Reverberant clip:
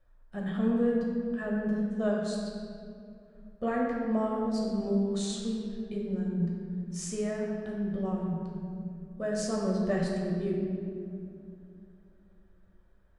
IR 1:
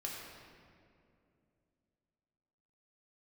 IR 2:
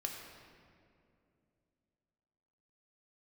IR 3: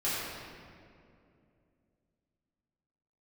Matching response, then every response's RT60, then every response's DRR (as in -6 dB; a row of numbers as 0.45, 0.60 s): 1; 2.5, 2.6, 2.5 s; -3.0, 1.0, -11.0 dB